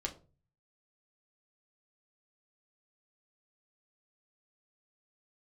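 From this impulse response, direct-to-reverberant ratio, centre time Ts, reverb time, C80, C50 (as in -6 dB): 0.5 dB, 11 ms, 0.35 s, 20.0 dB, 14.5 dB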